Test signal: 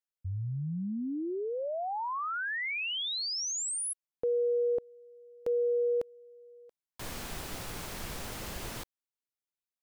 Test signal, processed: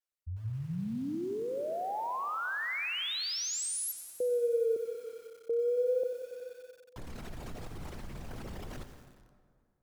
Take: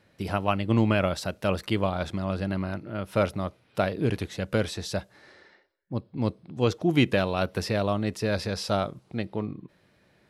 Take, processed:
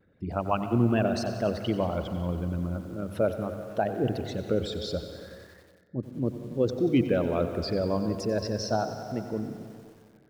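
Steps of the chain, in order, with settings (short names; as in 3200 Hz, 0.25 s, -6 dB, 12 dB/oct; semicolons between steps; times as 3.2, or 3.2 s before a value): formant sharpening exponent 2; wow and flutter 0.34 Hz 140 cents; notches 50/100/150 Hz; plate-style reverb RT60 2.1 s, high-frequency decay 0.65×, pre-delay 0.105 s, DRR 11 dB; lo-fi delay 92 ms, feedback 80%, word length 8-bit, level -13.5 dB; gain -1.5 dB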